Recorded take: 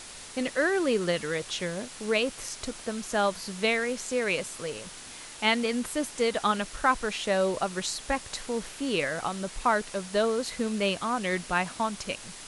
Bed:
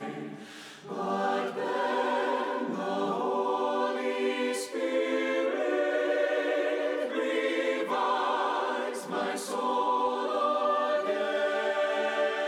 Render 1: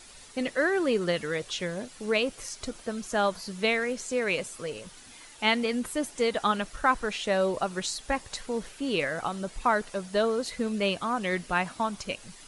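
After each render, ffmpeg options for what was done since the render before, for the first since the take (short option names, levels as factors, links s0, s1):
-af "afftdn=nr=9:nf=-44"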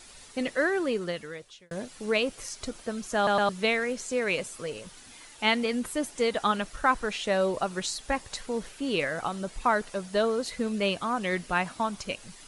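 -filter_complex "[0:a]asplit=5[s0][s1][s2][s3][s4];[s0]atrim=end=1.71,asetpts=PTS-STARTPTS,afade=t=out:st=0.61:d=1.1[s5];[s1]atrim=start=1.71:end=3.272,asetpts=PTS-STARTPTS,afade=t=in:d=0.004:c=hsin[s6];[s2]atrim=start=3.158:end=3.272[s7];[s3]atrim=start=3.158:end=3.272[s8];[s4]atrim=start=3.488[s9];[s5][s6]concat=n=2:v=0:a=1[s10];[s10][s7]acrossfade=d=0.004:c1=hsin:c2=hsin[s11];[s11][s8]acrossfade=d=0.004:c1=hsin:c2=hsin[s12];[s12][s9]acrossfade=d=0.004:c1=hsin:c2=hsin"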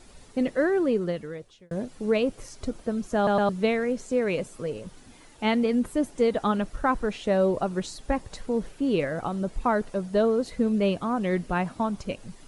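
-af "tiltshelf=f=860:g=7.5"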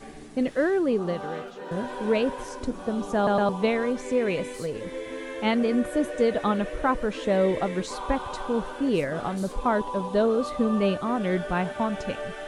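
-filter_complex "[1:a]volume=0.447[s0];[0:a][s0]amix=inputs=2:normalize=0"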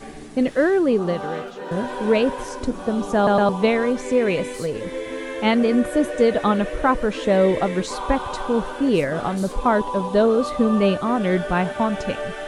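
-af "volume=1.88"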